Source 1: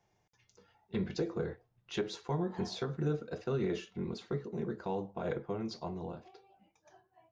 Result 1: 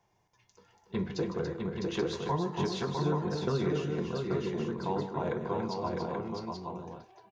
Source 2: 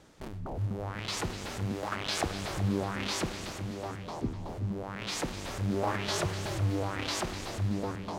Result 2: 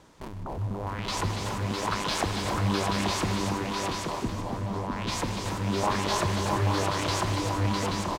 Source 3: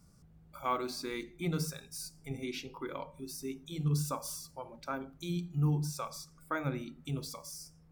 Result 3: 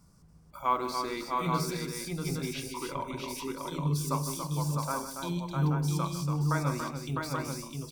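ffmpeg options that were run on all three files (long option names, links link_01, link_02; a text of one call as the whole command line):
ffmpeg -i in.wav -filter_complex "[0:a]equalizer=frequency=1000:width_type=o:width=0.21:gain=10.5,asplit=2[link_01][link_02];[link_02]aecho=0:1:154|284|655|831:0.251|0.447|0.631|0.562[link_03];[link_01][link_03]amix=inputs=2:normalize=0,volume=1.5dB" out.wav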